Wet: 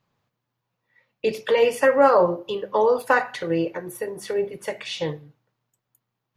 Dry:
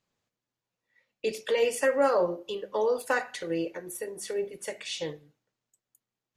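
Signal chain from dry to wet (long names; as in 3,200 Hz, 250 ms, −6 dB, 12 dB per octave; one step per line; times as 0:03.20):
octave-band graphic EQ 125/1,000/8,000 Hz +9/+6/−10 dB
level +5.5 dB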